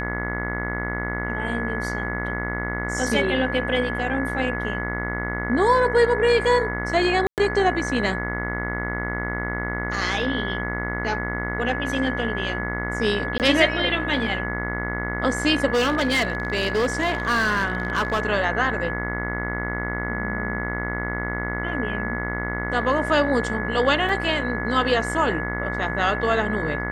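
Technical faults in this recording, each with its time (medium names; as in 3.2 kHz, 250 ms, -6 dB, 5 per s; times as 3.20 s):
buzz 60 Hz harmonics 37 -29 dBFS
whine 1.7 kHz -29 dBFS
7.27–7.38 s: dropout 108 ms
13.38–13.40 s: dropout 18 ms
15.73–18.23 s: clipped -17 dBFS
24.09 s: dropout 3.4 ms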